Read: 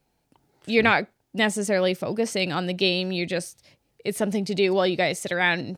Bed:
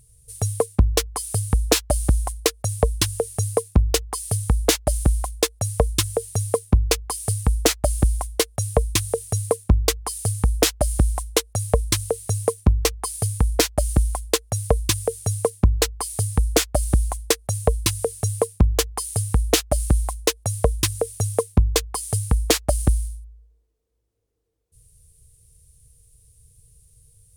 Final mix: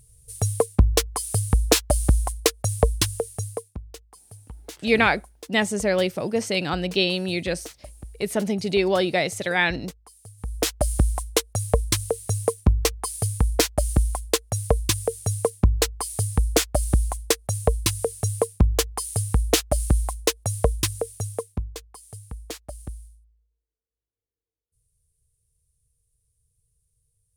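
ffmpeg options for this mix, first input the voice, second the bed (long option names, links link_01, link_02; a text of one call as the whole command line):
ffmpeg -i stem1.wav -i stem2.wav -filter_complex "[0:a]adelay=4150,volume=0.5dB[link_01];[1:a]volume=20.5dB,afade=type=out:start_time=2.89:duration=0.91:silence=0.0794328,afade=type=in:start_time=10.37:duration=0.47:silence=0.0944061,afade=type=out:start_time=20.68:duration=1.08:silence=0.158489[link_02];[link_01][link_02]amix=inputs=2:normalize=0" out.wav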